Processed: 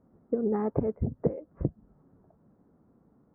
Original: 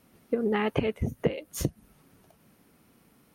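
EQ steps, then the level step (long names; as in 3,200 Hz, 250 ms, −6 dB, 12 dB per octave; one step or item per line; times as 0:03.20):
Gaussian smoothing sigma 8 samples
0.0 dB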